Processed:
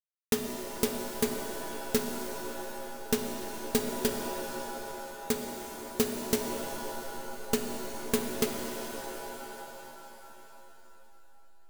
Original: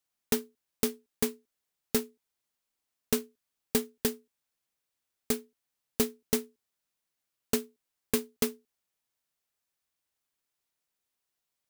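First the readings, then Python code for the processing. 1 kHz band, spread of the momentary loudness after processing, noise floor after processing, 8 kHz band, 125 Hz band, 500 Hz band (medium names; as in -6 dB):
+10.0 dB, 11 LU, -50 dBFS, +1.0 dB, +2.5 dB, +2.5 dB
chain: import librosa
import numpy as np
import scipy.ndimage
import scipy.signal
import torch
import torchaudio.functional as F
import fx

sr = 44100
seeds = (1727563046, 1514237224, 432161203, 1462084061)

y = fx.backlash(x, sr, play_db=-30.0)
y = fx.rev_shimmer(y, sr, seeds[0], rt60_s=3.5, semitones=7, shimmer_db=-2, drr_db=3.5)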